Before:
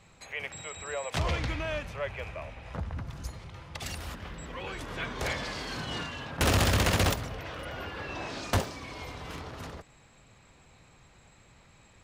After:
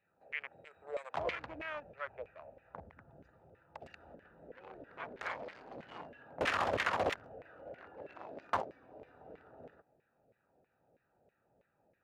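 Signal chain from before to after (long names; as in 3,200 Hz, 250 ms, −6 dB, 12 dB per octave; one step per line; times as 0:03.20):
adaptive Wiener filter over 41 samples
auto-filter band-pass saw down 3.1 Hz 500–2,200 Hz
level +3 dB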